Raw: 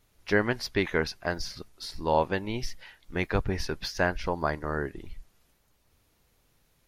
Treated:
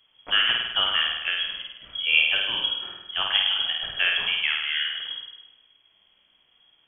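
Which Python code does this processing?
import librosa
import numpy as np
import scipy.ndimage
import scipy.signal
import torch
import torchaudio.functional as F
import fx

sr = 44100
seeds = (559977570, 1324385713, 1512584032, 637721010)

p1 = 10.0 ** (-24.0 / 20.0) * np.tanh(x / 10.0 ** (-24.0 / 20.0))
p2 = x + (p1 * 10.0 ** (-11.5 / 20.0))
p3 = fx.room_flutter(p2, sr, wall_m=8.8, rt60_s=0.98)
y = fx.freq_invert(p3, sr, carrier_hz=3300)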